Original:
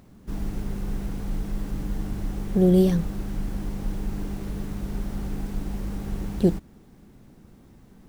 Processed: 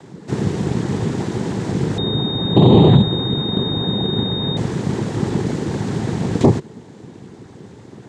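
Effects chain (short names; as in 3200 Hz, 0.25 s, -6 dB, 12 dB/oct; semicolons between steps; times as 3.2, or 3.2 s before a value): noise vocoder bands 6; maximiser +15 dB; 1.98–4.57 pulse-width modulation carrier 3700 Hz; gain -1 dB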